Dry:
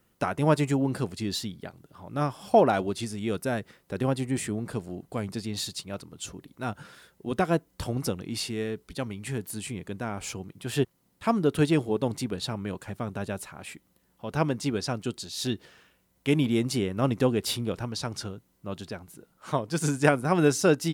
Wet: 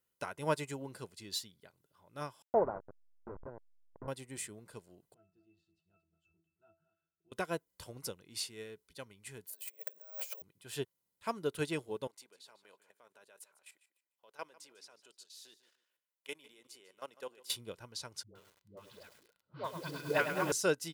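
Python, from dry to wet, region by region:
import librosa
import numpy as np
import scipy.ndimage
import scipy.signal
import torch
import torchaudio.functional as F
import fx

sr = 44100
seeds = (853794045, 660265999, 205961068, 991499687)

y = fx.chain(x, sr, fx.delta_hold(step_db=-21.0),
    fx.cheby2_lowpass(hz=3000.0, order=4, stop_db=50), at=(2.42, 4.08))
y = fx.chain(y, sr, fx.octave_resonator(note='E', decay_s=0.24),
    fx.echo_single(ms=220, db=-15.0), at=(5.14, 7.32))
y = fx.chain(y, sr, fx.over_compress(threshold_db=-41.0, ratio=-0.5),
    fx.highpass_res(hz=580.0, q=6.2),
    fx.resample_bad(factor=2, down='none', up='zero_stuff'), at=(9.5, 10.42))
y = fx.chain(y, sr, fx.highpass(hz=480.0, slope=12),
    fx.level_steps(step_db=14),
    fx.echo_feedback(ms=149, feedback_pct=25, wet_db=-14.0), at=(12.07, 17.5))
y = fx.chain(y, sr, fx.steep_lowpass(hz=4800.0, slope=72),
    fx.dispersion(late='highs', ms=123.0, hz=460.0),
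    fx.echo_crushed(ms=103, feedback_pct=80, bits=7, wet_db=-5.5), at=(18.23, 20.52))
y = fx.tilt_eq(y, sr, slope=2.0)
y = y + 0.33 * np.pad(y, (int(2.0 * sr / 1000.0), 0))[:len(y)]
y = fx.upward_expand(y, sr, threshold_db=-41.0, expansion=1.5)
y = y * 10.0 ** (-7.0 / 20.0)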